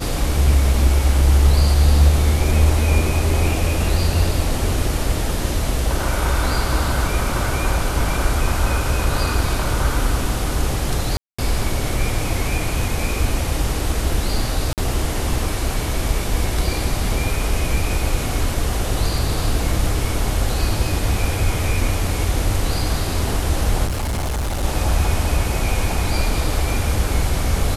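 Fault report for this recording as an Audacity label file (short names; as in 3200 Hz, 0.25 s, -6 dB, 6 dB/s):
11.170000	11.380000	gap 0.215 s
14.730000	14.780000	gap 48 ms
23.860000	24.640000	clipped -19 dBFS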